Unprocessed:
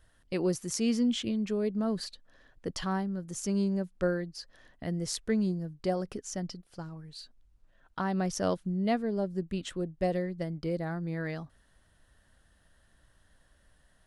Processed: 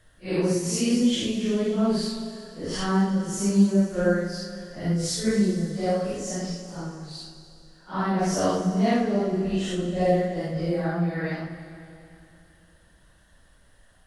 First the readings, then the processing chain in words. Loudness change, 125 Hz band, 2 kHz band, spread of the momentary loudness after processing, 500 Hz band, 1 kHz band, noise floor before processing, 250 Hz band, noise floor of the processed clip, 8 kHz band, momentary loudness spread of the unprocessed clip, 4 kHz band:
+7.5 dB, +8.0 dB, +7.0 dB, 14 LU, +7.0 dB, +7.5 dB, -66 dBFS, +7.5 dB, -57 dBFS, +7.5 dB, 13 LU, +7.5 dB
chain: phase randomisation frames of 200 ms; Schroeder reverb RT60 2.8 s, combs from 31 ms, DRR 7 dB; trim +6.5 dB

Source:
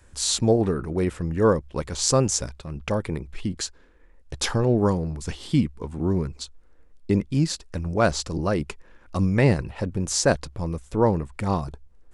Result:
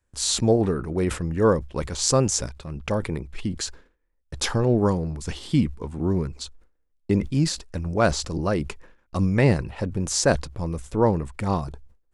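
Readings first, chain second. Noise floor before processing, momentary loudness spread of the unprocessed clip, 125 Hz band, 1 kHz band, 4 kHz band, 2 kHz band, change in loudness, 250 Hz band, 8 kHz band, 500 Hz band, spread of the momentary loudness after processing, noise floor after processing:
-53 dBFS, 12 LU, 0.0 dB, 0.0 dB, +0.5 dB, +0.5 dB, 0.0 dB, 0.0 dB, +0.5 dB, 0.0 dB, 12 LU, -69 dBFS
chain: gate with hold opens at -38 dBFS; decay stretcher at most 140 dB/s

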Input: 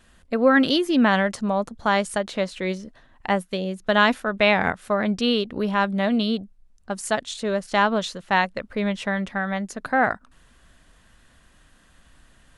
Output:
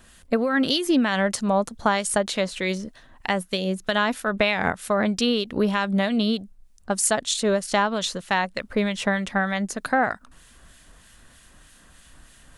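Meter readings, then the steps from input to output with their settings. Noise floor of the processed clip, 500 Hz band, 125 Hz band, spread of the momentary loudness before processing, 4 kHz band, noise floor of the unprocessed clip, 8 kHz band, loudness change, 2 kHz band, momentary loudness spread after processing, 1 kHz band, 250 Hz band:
-53 dBFS, -1.0 dB, +0.5 dB, 10 LU, +1.0 dB, -57 dBFS, +10.0 dB, -1.0 dB, -2.0 dB, 6 LU, -2.0 dB, -1.0 dB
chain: treble shelf 5.2 kHz +9.5 dB; compression 10:1, threshold -20 dBFS, peak gain reduction 9.5 dB; harmonic tremolo 3.2 Hz, depth 50%, crossover 1.7 kHz; trim +5 dB

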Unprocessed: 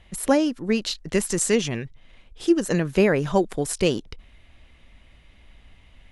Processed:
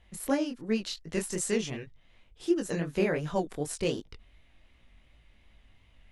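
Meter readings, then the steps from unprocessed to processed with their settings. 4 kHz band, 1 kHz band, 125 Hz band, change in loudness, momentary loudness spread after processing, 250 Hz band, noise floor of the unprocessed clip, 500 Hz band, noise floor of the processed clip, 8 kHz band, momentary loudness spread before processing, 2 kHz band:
-8.5 dB, -9.0 dB, -8.5 dB, -8.5 dB, 9 LU, -8.0 dB, -54 dBFS, -8.5 dB, -62 dBFS, -8.5 dB, 10 LU, -8.5 dB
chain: chorus 2.7 Hz, delay 18 ms, depth 6.7 ms; trim -5.5 dB

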